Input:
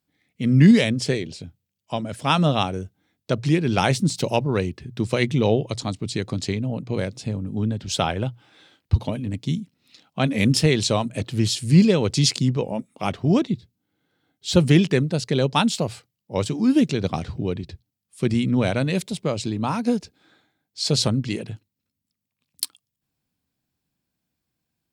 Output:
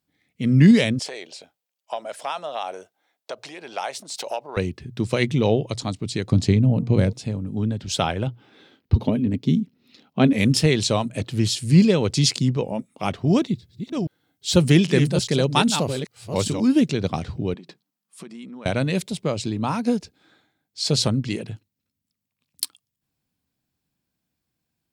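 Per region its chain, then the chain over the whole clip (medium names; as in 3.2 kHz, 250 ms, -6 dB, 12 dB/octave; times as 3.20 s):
0.99–4.57 s: compression 12:1, threshold -24 dBFS + resonant high-pass 670 Hz, resonance Q 2
6.32–7.13 s: bass shelf 320 Hz +11.5 dB + de-hum 230 Hz, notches 5
8.27–10.33 s: peaking EQ 8.4 kHz -9.5 dB 0.92 oct + small resonant body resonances 240/390 Hz, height 10 dB, ringing for 35 ms
13.27–16.68 s: chunks repeated in reverse 401 ms, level -7.5 dB + treble shelf 5.9 kHz +6.5 dB
17.54–18.66 s: peaking EQ 1.1 kHz +8 dB 0.94 oct + compression 10:1, threshold -34 dBFS + brick-wall FIR high-pass 150 Hz
whole clip: none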